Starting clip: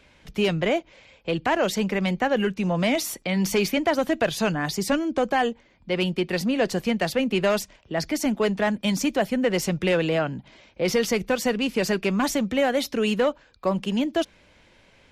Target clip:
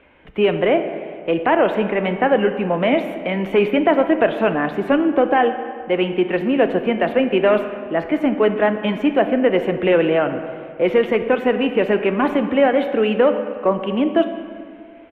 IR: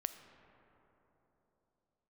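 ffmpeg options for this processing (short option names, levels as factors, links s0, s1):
-filter_complex "[0:a]firequalizer=gain_entry='entry(160,0);entry(300,10);entry(3000,3);entry(4900,-29);entry(12000,-20)':delay=0.05:min_phase=1[s0];[1:a]atrim=start_sample=2205,asetrate=83790,aresample=44100[s1];[s0][s1]afir=irnorm=-1:irlink=0,volume=1.78"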